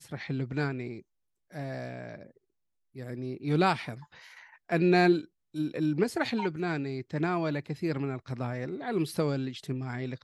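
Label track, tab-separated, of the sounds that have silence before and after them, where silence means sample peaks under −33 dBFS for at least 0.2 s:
1.550000	2.150000	sound
2.990000	3.940000	sound
4.700000	5.210000	sound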